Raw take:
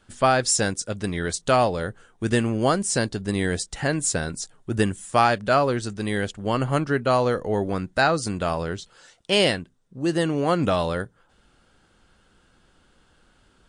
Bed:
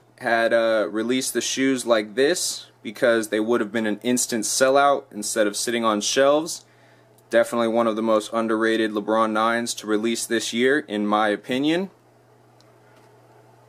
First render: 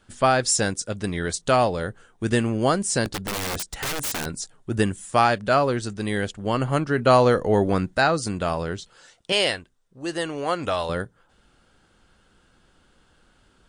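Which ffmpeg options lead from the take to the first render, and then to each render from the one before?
-filter_complex "[0:a]asettb=1/sr,asplit=3[a][b][c];[a]atrim=end=3.054[d];[b]atrim=start=3.05:end=4.26,asetpts=PTS-STARTPTS,afade=t=in:d=0.004:c=qsin,afade=t=out:st=1.206:d=0.004:c=qsin,aeval=exprs='(mod(12.6*val(0)+1,2)-1)/12.6':c=same[e];[c]atrim=start=4.256[f];[d][e]acrossfade=d=0.004:c1=hsin:c2=qsin[g];[g][f]acrossfade=d=0.004:c1=qsin:c2=hsin,asettb=1/sr,asplit=3[h][i][j];[h]atrim=end=9.324[k];[i]atrim=start=9.32:end=10.89,asetpts=PTS-STARTPTS,afade=t=in:d=0.004:c=qsin,afade=t=out:st=1.566:d=0.004:c=qsin,equalizer=f=180:t=o:w=2:g=-12[l];[j]atrim=start=10.886[m];[k][l]acrossfade=d=0.004:c1=hsin:c2=qsin[n];[n][m]acrossfade=d=0.004:c1=qsin:c2=hsin,asplit=3[o][p][q];[o]atrim=end=6.982[r];[p]atrim=start=6.978:end=7.952,asetpts=PTS-STARTPTS,volume=4.5dB[s];[q]atrim=start=7.948[t];[r][s]acrossfade=d=0.004:c1=hsin:c2=hsin[u];[u][t]acrossfade=d=0.004:c1=hsin:c2=hsin"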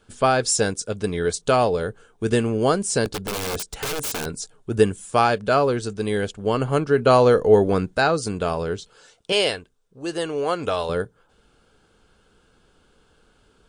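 -af "equalizer=f=440:t=o:w=0.21:g=10.5,bandreject=f=1.9k:w=8.3"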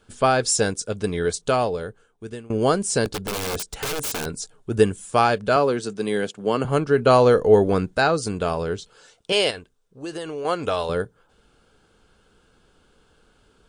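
-filter_complex "[0:a]asettb=1/sr,asplit=3[a][b][c];[a]atrim=end=5.564[d];[b]atrim=start=5.56:end=6.65,asetpts=PTS-STARTPTS,afade=t=in:d=0.004:c=qsin,afade=t=out:st=1.086:d=0.004:c=qsin,highpass=f=140:w=0.5412,highpass=f=140:w=1.3066[e];[c]atrim=start=6.646[f];[d][e]acrossfade=d=0.004:c1=hsin:c2=qsin[g];[g][f]acrossfade=d=0.004:c1=qsin:c2=hsin,asettb=1/sr,asplit=3[h][i][j];[h]atrim=end=9.504[k];[i]atrim=start=9.5:end=10.45,asetpts=PTS-STARTPTS,afade=t=in:d=0.004:c=qsin,afade=t=out:st=0.946:d=0.004:c=qsin,acompressor=threshold=-27dB:ratio=6:attack=3.2:release=140:knee=1:detection=peak[l];[j]atrim=start=10.446[m];[k][l]acrossfade=d=0.004:c1=hsin:c2=qsin[n];[n][m]acrossfade=d=0.004:c1=qsin:c2=hsin,asplit=2[o][p];[o]atrim=end=2.5,asetpts=PTS-STARTPTS,afade=t=out:st=1.22:d=1.28:silence=0.0668344[q];[p]atrim=start=2.5,asetpts=PTS-STARTPTS,afade=t=in:d=0.004:c=hsin:silence=0.0668344[r];[q][r]concat=n=2:v=0:a=1"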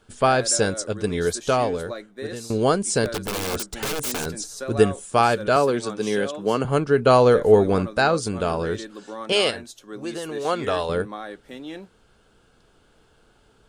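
-filter_complex "[1:a]volume=-15dB[a];[0:a][a]amix=inputs=2:normalize=0"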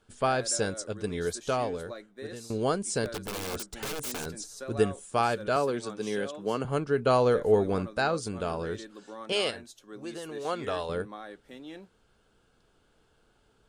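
-af "volume=-8dB"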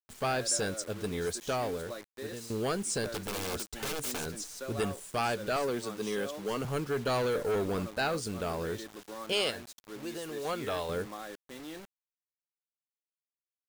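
-filter_complex "[0:a]acrossover=split=1800[a][b];[a]asoftclip=type=tanh:threshold=-27dB[c];[c][b]amix=inputs=2:normalize=0,acrusher=bits=7:mix=0:aa=0.000001"

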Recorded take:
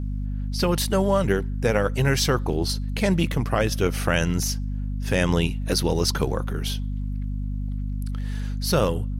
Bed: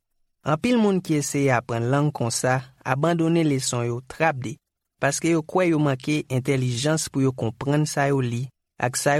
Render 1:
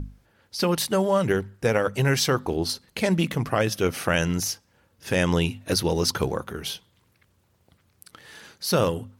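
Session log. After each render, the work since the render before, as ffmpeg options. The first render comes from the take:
-af "bandreject=f=50:t=h:w=6,bandreject=f=100:t=h:w=6,bandreject=f=150:t=h:w=6,bandreject=f=200:t=h:w=6,bandreject=f=250:t=h:w=6"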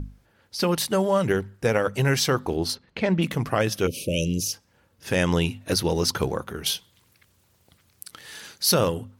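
-filter_complex "[0:a]asplit=3[a][b][c];[a]afade=t=out:st=2.74:d=0.02[d];[b]lowpass=3.1k,afade=t=in:st=2.74:d=0.02,afade=t=out:st=3.21:d=0.02[e];[c]afade=t=in:st=3.21:d=0.02[f];[d][e][f]amix=inputs=3:normalize=0,asplit=3[g][h][i];[g]afade=t=out:st=3.86:d=0.02[j];[h]asuperstop=centerf=1200:order=20:qfactor=0.66,afade=t=in:st=3.86:d=0.02,afade=t=out:st=4.52:d=0.02[k];[i]afade=t=in:st=4.52:d=0.02[l];[j][k][l]amix=inputs=3:normalize=0,asettb=1/sr,asplit=3[m][n][o];[m]atrim=end=6.664[p];[n]atrim=start=6.66:end=8.74,asetpts=PTS-STARTPTS,afade=t=in:d=0.004:c=qsin,afade=t=out:st=2.076:d=0.004:c=qsin,highshelf=f=2.5k:g=9[q];[o]atrim=start=8.736[r];[p][q]acrossfade=d=0.004:c1=hsin:c2=qsin[s];[s][r]acrossfade=d=0.004:c1=qsin:c2=hsin"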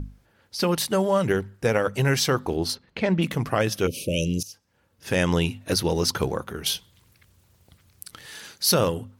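-filter_complex "[0:a]asettb=1/sr,asplit=3[a][b][c];[a]atrim=end=6.714[d];[b]atrim=start=6.71:end=8.26,asetpts=PTS-STARTPTS,afade=t=in:d=0.004:c=qsin,afade=t=out:st=1.546:d=0.004:c=qsin,lowshelf=f=110:g=11[e];[c]atrim=start=8.256[f];[d][e]acrossfade=d=0.004:c1=hsin:c2=qsin[g];[g][f]acrossfade=d=0.004:c1=qsin:c2=hsin,asplit=2[h][i];[h]atrim=end=4.43,asetpts=PTS-STARTPTS,afade=t=out:st=4.426:d=0.004:c=hsin:silence=0.133352[j];[i]atrim=start=4.43,asetpts=PTS-STARTPTS,afade=t=in:d=0.69:silence=0.133352[k];[j][k]concat=n=2:v=0:a=1"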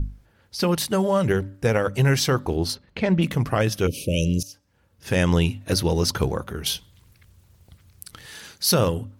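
-af "lowshelf=f=110:g=10.5,bandreject=f=287.8:t=h:w=4,bandreject=f=575.6:t=h:w=4"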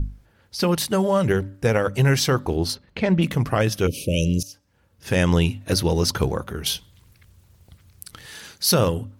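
-af "volume=1dB"

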